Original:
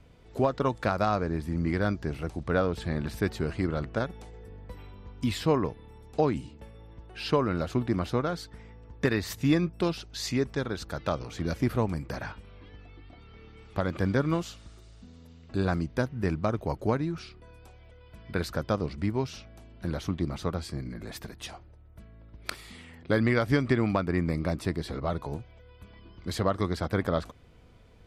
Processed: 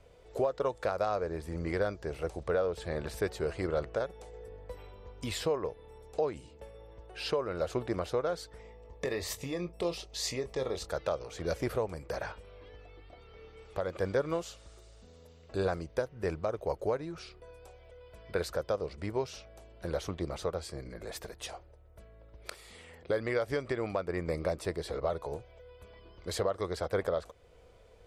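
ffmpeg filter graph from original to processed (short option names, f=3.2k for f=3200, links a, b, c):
-filter_complex "[0:a]asettb=1/sr,asplit=3[a][b][c];[a]atrim=end=8.614[d];[b]atrim=start=8.61:end=10.89,asetpts=PTS-STARTPTS,afade=t=in:d=0.004:c=qsin,afade=t=out:st=2.276:d=0.004:c=qsin,acompressor=threshold=-26dB:ratio=10:attack=3.2:release=140:knee=1:detection=peak,asuperstop=centerf=1500:order=4:qfactor=4.4,asplit=2[e][f];[f]adelay=23,volume=-9dB[g];[e][g]amix=inputs=2:normalize=0,atrim=end_sample=100548[h];[c]atrim=start=10.886[i];[d][h]acrossfade=d=0.004:c1=hsin:c2=qsin[j];[j][i]acrossfade=d=0.004:c1=qsin:c2=hsin,equalizer=f=125:t=o:w=1:g=-5,equalizer=f=250:t=o:w=1:g=-10,equalizer=f=500:t=o:w=1:g=11,equalizer=f=8k:t=o:w=1:g=5,alimiter=limit=-17dB:level=0:latency=1:release=420,volume=-3dB"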